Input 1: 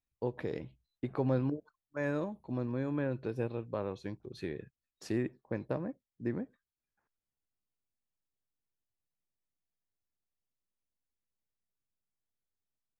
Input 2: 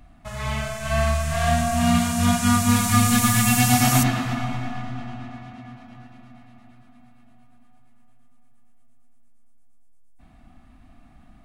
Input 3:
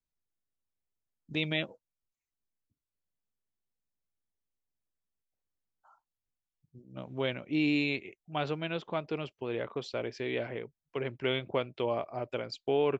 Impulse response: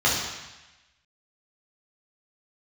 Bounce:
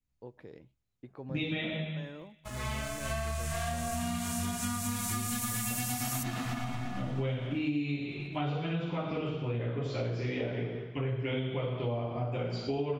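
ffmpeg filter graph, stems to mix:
-filter_complex "[0:a]volume=-12.5dB[a];[1:a]highshelf=f=6k:g=7,acompressor=threshold=-20dB:ratio=2.5,aeval=exprs='sgn(val(0))*max(abs(val(0))-0.00631,0)':c=same,adelay=2200,volume=-6dB[b];[2:a]lowshelf=f=280:g=12,flanger=delay=0.4:depth=8.5:regen=-55:speed=0.46:shape=triangular,volume=-2.5dB,asplit=2[c][d];[d]volume=-8dB[e];[3:a]atrim=start_sample=2205[f];[e][f]afir=irnorm=-1:irlink=0[g];[a][b][c][g]amix=inputs=4:normalize=0,acompressor=threshold=-30dB:ratio=6"

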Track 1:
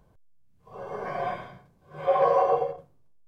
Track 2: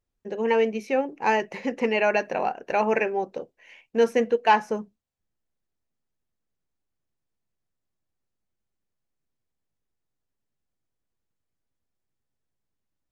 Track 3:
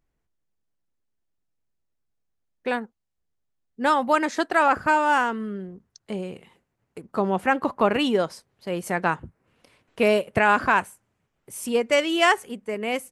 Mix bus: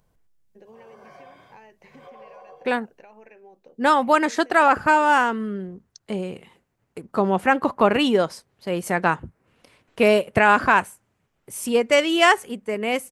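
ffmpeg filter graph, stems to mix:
-filter_complex "[0:a]acompressor=threshold=-29dB:ratio=2.5,highshelf=f=2.8k:g=11.5,acontrast=85,volume=-15dB[a];[1:a]acompressor=threshold=-27dB:ratio=6,adelay=300,volume=-13.5dB[b];[2:a]volume=3dB[c];[a][b]amix=inputs=2:normalize=0,acompressor=threshold=-47dB:ratio=2.5,volume=0dB[d];[c][d]amix=inputs=2:normalize=0"

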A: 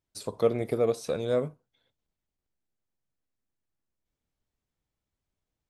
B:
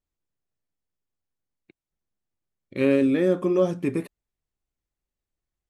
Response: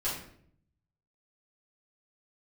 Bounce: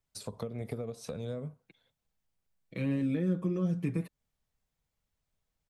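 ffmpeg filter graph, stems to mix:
-filter_complex "[0:a]acompressor=threshold=-26dB:ratio=6,volume=0.5dB[a];[1:a]aecho=1:1:6.2:0.88,volume=-3.5dB[b];[a][b]amix=inputs=2:normalize=0,equalizer=f=330:t=o:w=0.42:g=-10,acrossover=split=310[c][d];[d]acompressor=threshold=-41dB:ratio=10[e];[c][e]amix=inputs=2:normalize=0"

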